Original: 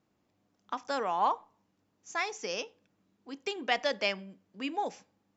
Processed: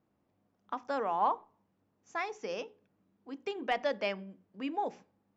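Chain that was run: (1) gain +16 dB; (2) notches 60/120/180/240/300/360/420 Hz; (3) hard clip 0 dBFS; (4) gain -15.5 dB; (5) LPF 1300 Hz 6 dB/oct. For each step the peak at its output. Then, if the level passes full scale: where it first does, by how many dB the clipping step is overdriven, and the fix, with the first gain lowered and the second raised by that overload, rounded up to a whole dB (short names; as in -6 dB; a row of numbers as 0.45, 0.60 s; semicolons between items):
+4.5, +4.5, 0.0, -15.5, -18.0 dBFS; step 1, 4.5 dB; step 1 +11 dB, step 4 -10.5 dB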